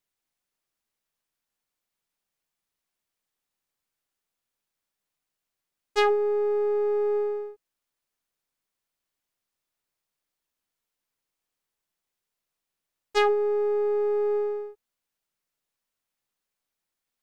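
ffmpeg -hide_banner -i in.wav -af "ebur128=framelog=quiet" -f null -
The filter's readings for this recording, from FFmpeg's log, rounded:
Integrated loudness:
  I:         -25.5 LUFS
  Threshold: -35.9 LUFS
Loudness range:
  LRA:         6.1 LU
  Threshold: -49.3 LUFS
  LRA low:   -33.8 LUFS
  LRA high:  -27.7 LUFS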